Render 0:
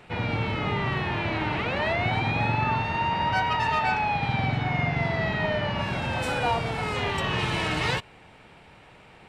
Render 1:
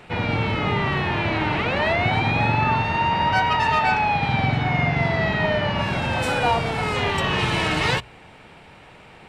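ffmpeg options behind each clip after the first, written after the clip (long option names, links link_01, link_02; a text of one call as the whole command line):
ffmpeg -i in.wav -af "bandreject=frequency=60:width_type=h:width=6,bandreject=frequency=120:width_type=h:width=6,volume=5dB" out.wav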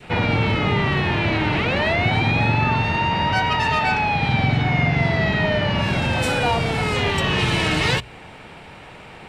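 ffmpeg -i in.wav -filter_complex "[0:a]asplit=2[link_01][link_02];[link_02]alimiter=limit=-18dB:level=0:latency=1,volume=-1dB[link_03];[link_01][link_03]amix=inputs=2:normalize=0,adynamicequalizer=threshold=0.0398:dfrequency=990:dqfactor=0.75:tfrequency=990:tqfactor=0.75:attack=5:release=100:ratio=0.375:range=2.5:mode=cutabove:tftype=bell" out.wav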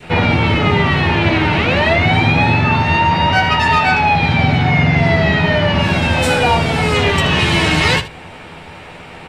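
ffmpeg -i in.wav -af "aecho=1:1:12|79:0.562|0.211,volume=5dB" out.wav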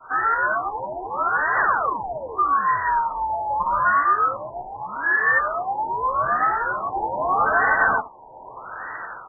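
ffmpeg -i in.wav -af "dynaudnorm=framelen=110:gausssize=5:maxgain=8.5dB,lowpass=frequency=3100:width_type=q:width=0.5098,lowpass=frequency=3100:width_type=q:width=0.6013,lowpass=frequency=3100:width_type=q:width=0.9,lowpass=frequency=3100:width_type=q:width=2.563,afreqshift=-3700,afftfilt=real='re*lt(b*sr/1024,960*pow(2000/960,0.5+0.5*sin(2*PI*0.81*pts/sr)))':imag='im*lt(b*sr/1024,960*pow(2000/960,0.5+0.5*sin(2*PI*0.81*pts/sr)))':win_size=1024:overlap=0.75" out.wav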